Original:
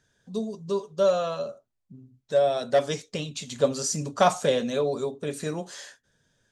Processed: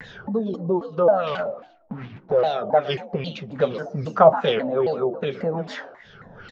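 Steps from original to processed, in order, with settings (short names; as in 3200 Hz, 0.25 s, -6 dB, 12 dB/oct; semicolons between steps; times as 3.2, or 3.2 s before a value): 1.27–2.41 block floating point 3-bit; Chebyshev low-pass 6100 Hz, order 4; bell 290 Hz -7 dB 0.64 oct; upward compressor, threshold -24 dBFS; small resonant body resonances 200/430/760/1300 Hz, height 7 dB, ringing for 25 ms; frequency-shifting echo 0.117 s, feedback 31%, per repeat +52 Hz, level -14 dB; LFO low-pass sine 2.5 Hz 720–3500 Hz; shaped vibrato saw down 3.7 Hz, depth 250 cents; gain -1 dB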